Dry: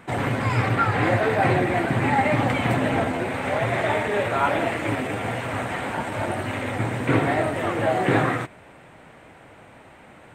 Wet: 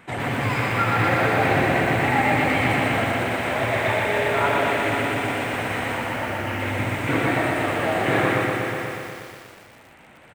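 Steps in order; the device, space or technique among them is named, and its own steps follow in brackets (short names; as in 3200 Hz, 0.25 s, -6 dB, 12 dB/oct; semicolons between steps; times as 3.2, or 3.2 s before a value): presence and air boost (bell 2500 Hz +5 dB 1.5 oct; high shelf 9900 Hz +4 dB); 5.97–6.6 elliptic low-pass 3100 Hz; tapped delay 78/150/525 ms -14/-10.5/-10.5 dB; lo-fi delay 0.121 s, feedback 80%, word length 7-bit, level -3 dB; gain -4 dB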